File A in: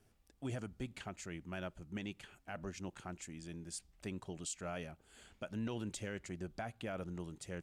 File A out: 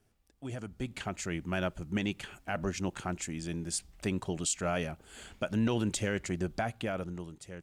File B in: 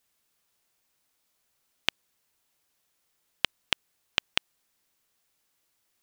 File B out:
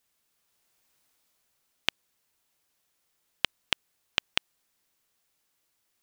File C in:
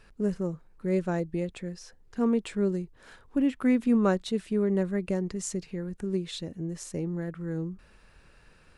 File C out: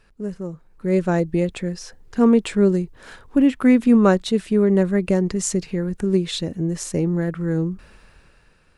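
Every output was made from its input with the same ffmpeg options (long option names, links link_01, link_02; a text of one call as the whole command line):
ffmpeg -i in.wav -af "dynaudnorm=framelen=160:gausssize=11:maxgain=12dB,volume=-1dB" out.wav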